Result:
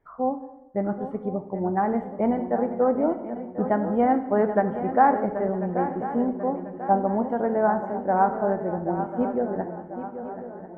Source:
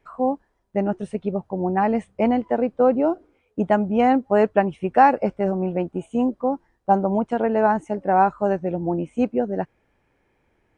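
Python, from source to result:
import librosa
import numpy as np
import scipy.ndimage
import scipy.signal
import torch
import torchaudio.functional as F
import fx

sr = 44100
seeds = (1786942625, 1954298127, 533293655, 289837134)

y = scipy.signal.savgol_filter(x, 41, 4, mode='constant')
y = fx.echo_swing(y, sr, ms=1042, ratio=3, feedback_pct=45, wet_db=-11.0)
y = fx.rev_plate(y, sr, seeds[0], rt60_s=0.92, hf_ratio=0.9, predelay_ms=0, drr_db=7.5)
y = F.gain(torch.from_numpy(y), -4.0).numpy()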